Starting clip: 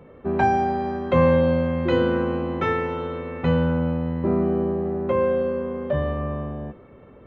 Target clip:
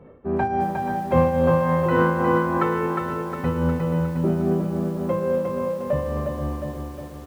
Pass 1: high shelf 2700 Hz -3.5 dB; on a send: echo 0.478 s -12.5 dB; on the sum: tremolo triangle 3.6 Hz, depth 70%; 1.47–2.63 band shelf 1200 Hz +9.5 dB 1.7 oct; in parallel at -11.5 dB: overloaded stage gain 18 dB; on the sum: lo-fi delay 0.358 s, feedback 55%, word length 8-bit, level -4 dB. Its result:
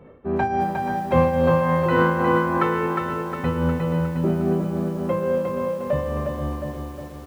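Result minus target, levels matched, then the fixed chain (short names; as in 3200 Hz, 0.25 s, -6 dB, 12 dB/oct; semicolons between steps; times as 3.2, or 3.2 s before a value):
4000 Hz band +3.5 dB
high shelf 2700 Hz -12.5 dB; on a send: echo 0.478 s -12.5 dB; on the sum: tremolo triangle 3.6 Hz, depth 70%; 1.47–2.63 band shelf 1200 Hz +9.5 dB 1.7 oct; in parallel at -11.5 dB: overloaded stage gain 18 dB; on the sum: lo-fi delay 0.358 s, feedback 55%, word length 8-bit, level -4 dB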